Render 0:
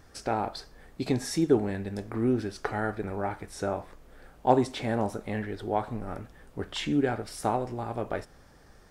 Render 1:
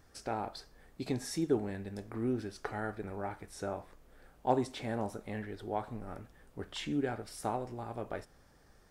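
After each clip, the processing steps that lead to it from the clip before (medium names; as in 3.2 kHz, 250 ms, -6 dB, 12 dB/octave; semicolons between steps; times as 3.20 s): treble shelf 8.4 kHz +4 dB; trim -7.5 dB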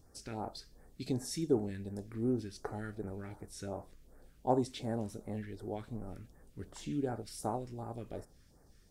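phase shifter stages 2, 2.7 Hz, lowest notch 710–3000 Hz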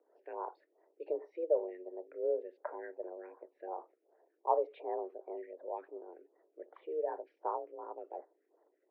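resonances exaggerated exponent 1.5; mistuned SSB +170 Hz 200–2400 Hz; tape noise reduction on one side only decoder only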